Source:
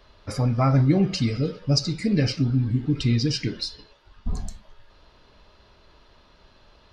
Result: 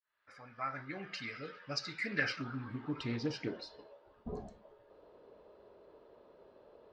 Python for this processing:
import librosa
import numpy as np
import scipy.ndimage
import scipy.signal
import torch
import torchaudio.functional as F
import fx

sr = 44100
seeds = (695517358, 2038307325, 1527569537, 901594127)

y = fx.fade_in_head(x, sr, length_s=2.26)
y = fx.filter_sweep_bandpass(y, sr, from_hz=1700.0, to_hz=470.0, start_s=2.1, end_s=4.25, q=2.9)
y = fx.doppler_dist(y, sr, depth_ms=0.14)
y = y * 10.0 ** (6.5 / 20.0)